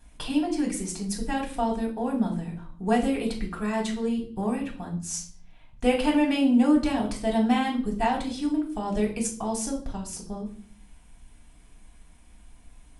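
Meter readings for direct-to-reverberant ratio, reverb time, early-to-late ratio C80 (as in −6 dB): −2.0 dB, 0.45 s, 14.0 dB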